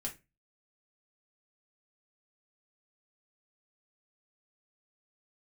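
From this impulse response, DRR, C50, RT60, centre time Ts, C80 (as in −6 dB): −1.5 dB, 14.0 dB, 0.25 s, 13 ms, 22.0 dB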